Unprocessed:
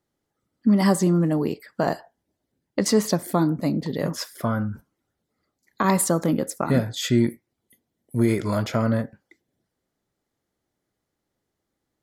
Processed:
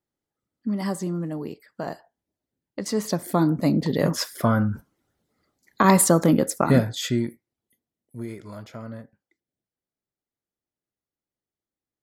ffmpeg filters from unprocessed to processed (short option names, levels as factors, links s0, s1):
-af "volume=1.58,afade=t=in:st=2.85:d=1:silence=0.237137,afade=t=out:st=6.64:d=0.61:silence=0.281838,afade=t=out:st=7.25:d=1.09:silence=0.398107"